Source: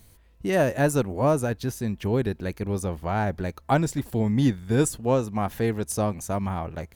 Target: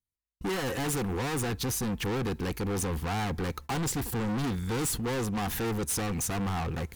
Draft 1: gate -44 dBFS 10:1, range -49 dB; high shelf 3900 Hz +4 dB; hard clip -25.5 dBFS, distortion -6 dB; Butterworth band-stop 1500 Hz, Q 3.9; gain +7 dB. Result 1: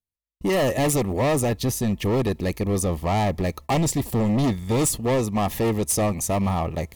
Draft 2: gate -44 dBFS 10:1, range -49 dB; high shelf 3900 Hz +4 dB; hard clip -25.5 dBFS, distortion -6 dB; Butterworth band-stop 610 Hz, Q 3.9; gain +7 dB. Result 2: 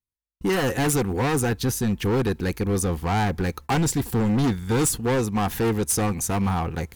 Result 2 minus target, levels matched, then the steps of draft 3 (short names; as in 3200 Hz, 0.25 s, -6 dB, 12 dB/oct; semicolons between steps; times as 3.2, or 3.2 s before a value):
hard clip: distortion -4 dB
gate -44 dBFS 10:1, range -49 dB; high shelf 3900 Hz +4 dB; hard clip -35.5 dBFS, distortion -2 dB; Butterworth band-stop 610 Hz, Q 3.9; gain +7 dB